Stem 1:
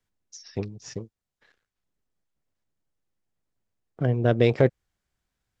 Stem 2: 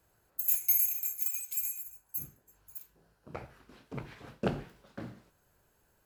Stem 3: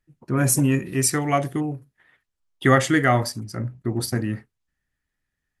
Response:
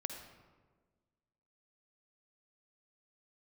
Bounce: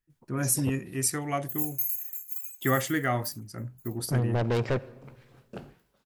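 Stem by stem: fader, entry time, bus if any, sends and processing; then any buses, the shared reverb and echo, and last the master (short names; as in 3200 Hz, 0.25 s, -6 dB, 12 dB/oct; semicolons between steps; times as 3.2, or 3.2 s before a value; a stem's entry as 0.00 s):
-1.5 dB, 0.10 s, muted 0.7–2.7, send -10.5 dB, soft clip -23 dBFS, distortion -5 dB
-10.5 dB, 1.10 s, no send, dry
-9.0 dB, 0.00 s, no send, dry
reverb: on, RT60 1.5 s, pre-delay 46 ms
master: high shelf 10000 Hz +9.5 dB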